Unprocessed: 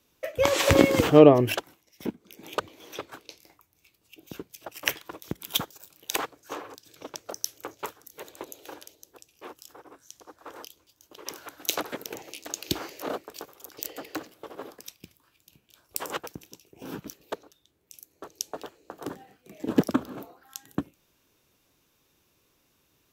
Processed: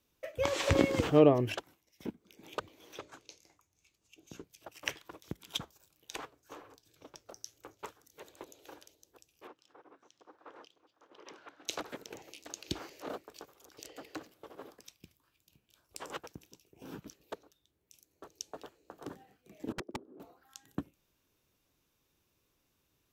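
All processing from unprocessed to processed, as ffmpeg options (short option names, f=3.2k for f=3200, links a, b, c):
-filter_complex "[0:a]asettb=1/sr,asplit=3[a][b][c];[a]atrim=end=2.994[d];[b]atrim=start=2.99:end=4.44,asetpts=PTS-STARTPTS,afade=t=in:d=0.004:c=qsin,afade=t=out:st=1.446:d=0.004:c=qsin,lowpass=9.6k,equalizer=f=6.6k:w=3.3:g=9.5,bandreject=f=60:t=h:w=6,bandreject=f=120:t=h:w=6,bandreject=f=180:t=h:w=6,bandreject=f=240:t=h:w=6,bandreject=f=300:t=h:w=6,bandreject=f=360:t=h:w=6,bandreject=f=420:t=h:w=6,bandreject=f=480:t=h:w=6,bandreject=f=540:t=h:w=6,bandreject=f=600:t=h:w=6[e];[c]atrim=start=4.436[f];[d][e]acrossfade=d=0.004:c1=hsin:c2=qsin[g];[g][f]acrossfade=d=0.004:c1=qsin:c2=hsin,asettb=1/sr,asplit=3[h][i][j];[h]atrim=end=5.584[k];[i]atrim=start=5.58:end=7.84,asetpts=PTS-STARTPTS,afade=t=in:d=0.004:c=qsin,afade=t=out:st=2.256:d=0.004:c=qsin,lowshelf=f=93:g=8.5,flanger=delay=5.8:depth=3.2:regen=-81:speed=1.9:shape=sinusoidal[l];[j]atrim=start=7.836[m];[k][l]acrossfade=d=0.004:c1=hsin:c2=qsin[n];[n][m]acrossfade=d=0.004:c1=qsin:c2=hsin,asettb=1/sr,asplit=3[o][p][q];[o]atrim=end=9.474[r];[p]atrim=start=9.47:end=11.68,asetpts=PTS-STARTPTS,afade=t=in:d=0.004:c=qsin,afade=t=out:st=2.206:d=0.004:c=qsin,highpass=180,lowpass=3.3k,aecho=1:1:555:0.266,atrim=end_sample=97461[s];[q]atrim=start=11.676[t];[r][s]acrossfade=d=0.004:c1=hsin:c2=qsin[u];[u][t]acrossfade=d=0.004:c1=qsin:c2=hsin,asettb=1/sr,asplit=3[v][w][x];[v]atrim=end=19.724[y];[w]atrim=start=19.72:end=20.2,asetpts=PTS-STARTPTS,afade=t=in:d=0.004:c=qsin,afade=t=out:st=0.476:d=0.004:c=qsin,bandpass=f=370:t=q:w=4,aeval=exprs='(mod(12.6*val(0)+1,2)-1)/12.6':c=same[z];[x]atrim=start=20.196[aa];[y][z]acrossfade=d=0.004:c1=hsin:c2=qsin[ab];[ab][aa]acrossfade=d=0.004:c1=qsin:c2=hsin,acrossover=split=9100[ac][ad];[ad]acompressor=threshold=-52dB:ratio=4:attack=1:release=60[ae];[ac][ae]amix=inputs=2:normalize=0,lowshelf=f=100:g=6.5,volume=-9dB"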